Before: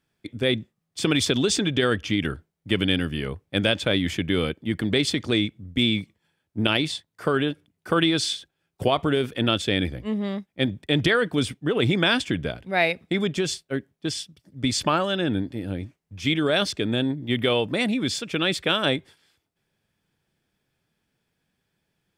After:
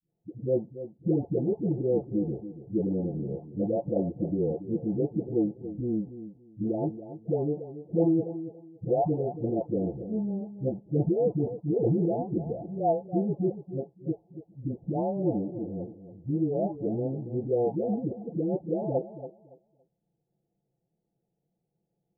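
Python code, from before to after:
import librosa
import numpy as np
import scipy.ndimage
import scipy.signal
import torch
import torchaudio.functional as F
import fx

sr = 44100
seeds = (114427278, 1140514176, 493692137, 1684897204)

p1 = fx.spec_delay(x, sr, highs='late', ms=919)
p2 = scipy.signal.sosfilt(scipy.signal.butter(16, 830.0, 'lowpass', fs=sr, output='sos'), p1)
p3 = fx.low_shelf(p2, sr, hz=72.0, db=-7.5)
y = p3 + fx.echo_feedback(p3, sr, ms=282, feedback_pct=21, wet_db=-12.5, dry=0)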